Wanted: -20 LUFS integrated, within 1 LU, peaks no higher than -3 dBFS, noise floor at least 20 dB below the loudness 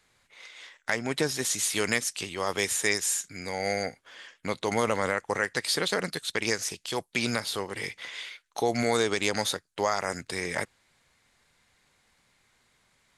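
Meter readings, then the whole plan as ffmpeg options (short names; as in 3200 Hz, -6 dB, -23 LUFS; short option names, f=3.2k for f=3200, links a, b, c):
loudness -29.0 LUFS; peak -8.0 dBFS; loudness target -20.0 LUFS
-> -af "volume=9dB,alimiter=limit=-3dB:level=0:latency=1"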